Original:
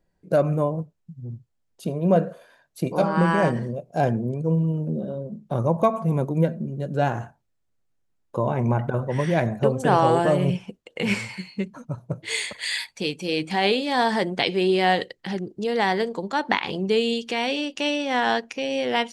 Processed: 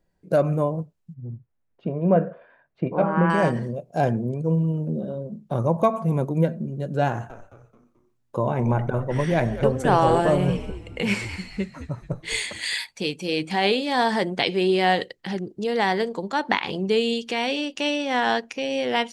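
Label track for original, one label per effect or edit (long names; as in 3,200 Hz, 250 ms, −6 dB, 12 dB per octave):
1.140000	3.300000	low-pass filter 2,400 Hz 24 dB per octave
7.080000	12.740000	echo with shifted repeats 217 ms, feedback 40%, per repeat −120 Hz, level −12.5 dB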